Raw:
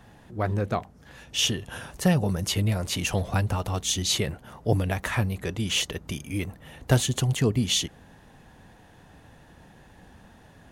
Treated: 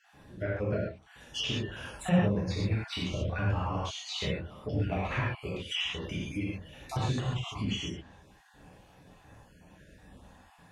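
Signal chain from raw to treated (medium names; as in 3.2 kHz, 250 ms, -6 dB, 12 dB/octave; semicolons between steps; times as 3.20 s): random holes in the spectrogram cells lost 48%; gated-style reverb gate 160 ms flat, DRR -7 dB; low-pass that closes with the level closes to 2.7 kHz, closed at -20 dBFS; trim -8 dB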